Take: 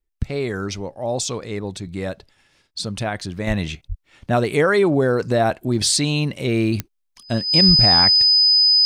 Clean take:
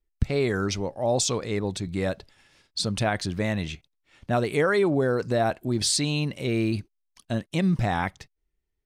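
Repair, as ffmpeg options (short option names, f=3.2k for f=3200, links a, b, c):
-filter_complex "[0:a]adeclick=t=4,bandreject=f=5k:w=30,asplit=3[a][b][c];[a]afade=t=out:st=3.47:d=0.02[d];[b]highpass=f=140:w=0.5412,highpass=f=140:w=1.3066,afade=t=in:st=3.47:d=0.02,afade=t=out:st=3.59:d=0.02[e];[c]afade=t=in:st=3.59:d=0.02[f];[d][e][f]amix=inputs=3:normalize=0,asplit=3[g][h][i];[g]afade=t=out:st=3.88:d=0.02[j];[h]highpass=f=140:w=0.5412,highpass=f=140:w=1.3066,afade=t=in:st=3.88:d=0.02,afade=t=out:st=4:d=0.02[k];[i]afade=t=in:st=4:d=0.02[l];[j][k][l]amix=inputs=3:normalize=0,asplit=3[m][n][o];[m]afade=t=out:st=7.67:d=0.02[p];[n]highpass=f=140:w=0.5412,highpass=f=140:w=1.3066,afade=t=in:st=7.67:d=0.02,afade=t=out:st=7.79:d=0.02[q];[o]afade=t=in:st=7.79:d=0.02[r];[p][q][r]amix=inputs=3:normalize=0,asetnsamples=n=441:p=0,asendcmd='3.47 volume volume -5.5dB',volume=0dB"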